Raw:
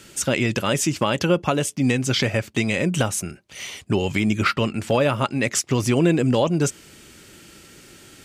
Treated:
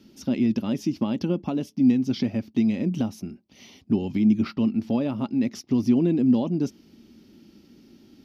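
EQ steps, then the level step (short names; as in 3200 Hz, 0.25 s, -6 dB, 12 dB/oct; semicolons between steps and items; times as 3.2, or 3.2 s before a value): EQ curve 150 Hz 0 dB, 230 Hz +15 dB, 500 Hz -4 dB, 810 Hz -1 dB, 1500 Hz -12 dB, 5500 Hz -2 dB, 8000 Hz -26 dB, 12000 Hz -8 dB; -9.0 dB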